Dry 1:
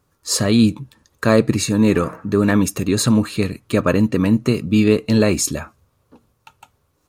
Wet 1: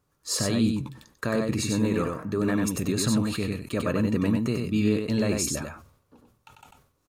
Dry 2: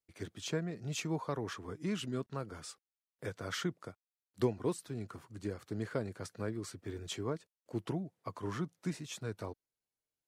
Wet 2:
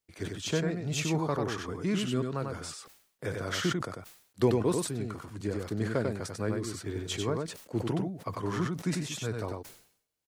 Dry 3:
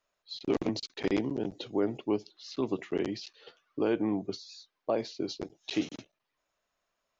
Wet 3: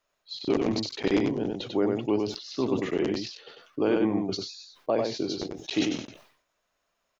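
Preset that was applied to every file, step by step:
peak limiter -8.5 dBFS; delay 95 ms -4 dB; decay stretcher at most 96 dB/s; peak normalisation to -12 dBFS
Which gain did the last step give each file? -8.0 dB, +5.5 dB, +3.0 dB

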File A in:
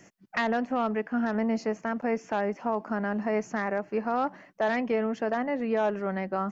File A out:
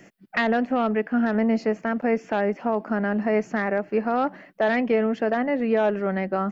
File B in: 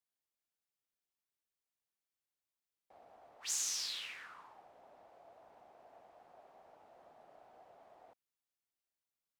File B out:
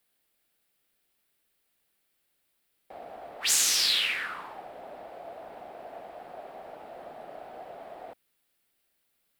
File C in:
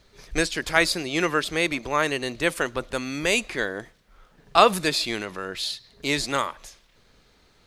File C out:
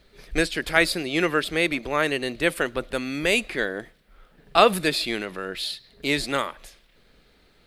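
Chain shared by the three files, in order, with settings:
fifteen-band graphic EQ 100 Hz -7 dB, 1 kHz -6 dB, 6.3 kHz -10 dB; normalise loudness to -24 LUFS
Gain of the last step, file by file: +6.5 dB, +19.0 dB, +2.0 dB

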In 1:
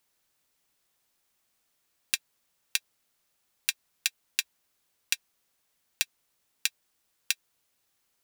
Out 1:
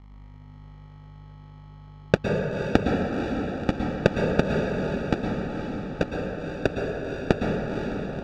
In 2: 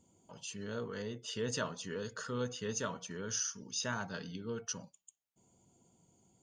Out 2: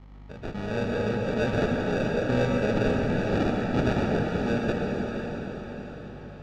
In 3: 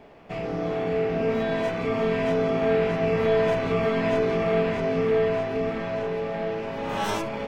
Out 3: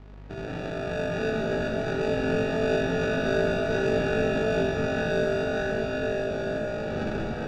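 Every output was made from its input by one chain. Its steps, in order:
hum 50 Hz, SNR 17 dB; sample-and-hold 42×; distance through air 180 m; on a send: echo that smears into a reverb 507 ms, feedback 51%, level -6 dB; on the sum: plate-style reverb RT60 2.5 s, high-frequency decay 0.45×, pre-delay 100 ms, DRR 0.5 dB; normalise loudness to -27 LUFS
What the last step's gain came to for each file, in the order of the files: +9.5 dB, +10.5 dB, -4.5 dB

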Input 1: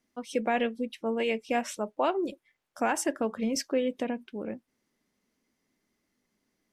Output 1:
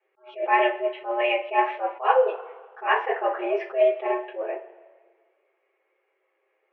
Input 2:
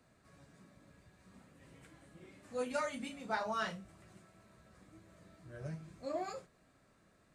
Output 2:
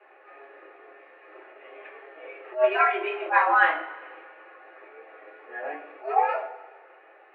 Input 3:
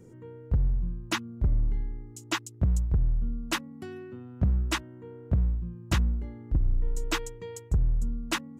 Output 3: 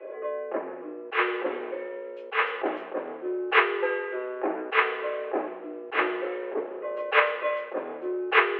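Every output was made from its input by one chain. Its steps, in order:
two-slope reverb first 0.24 s, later 1.6 s, from -20 dB, DRR -8 dB; mistuned SSB +130 Hz 290–2500 Hz; attacks held to a fixed rise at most 220 dB/s; peak normalisation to -6 dBFS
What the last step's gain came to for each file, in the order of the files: +1.0 dB, +9.5 dB, +10.0 dB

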